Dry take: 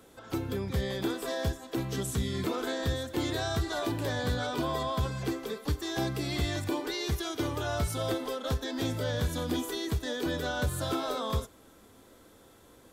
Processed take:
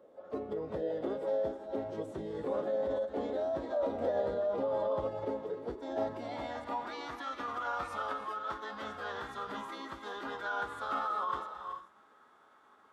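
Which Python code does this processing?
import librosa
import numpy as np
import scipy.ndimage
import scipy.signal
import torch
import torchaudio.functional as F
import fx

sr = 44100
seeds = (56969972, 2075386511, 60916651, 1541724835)

y = fx.filter_sweep_bandpass(x, sr, from_hz=570.0, to_hz=1200.0, start_s=5.71, end_s=7.08, q=2.8)
y = fx.rev_gated(y, sr, seeds[0], gate_ms=460, shape='rising', drr_db=8.5)
y = fx.pitch_keep_formants(y, sr, semitones=-3.5)
y = y * librosa.db_to_amplitude(5.5)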